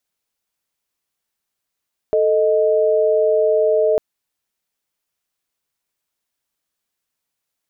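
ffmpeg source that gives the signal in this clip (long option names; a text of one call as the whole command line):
ffmpeg -f lavfi -i "aevalsrc='0.168*(sin(2*PI*440*t)+sin(2*PI*622.25*t))':duration=1.85:sample_rate=44100" out.wav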